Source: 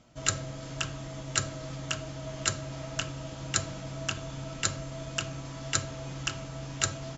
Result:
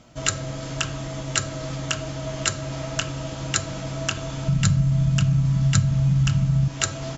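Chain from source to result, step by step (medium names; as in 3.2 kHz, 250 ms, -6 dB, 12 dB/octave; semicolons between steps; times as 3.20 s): 4.48–6.68 s: resonant low shelf 250 Hz +13.5 dB, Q 3; compression 2:1, threshold -30 dBFS, peak gain reduction 9 dB; trim +8.5 dB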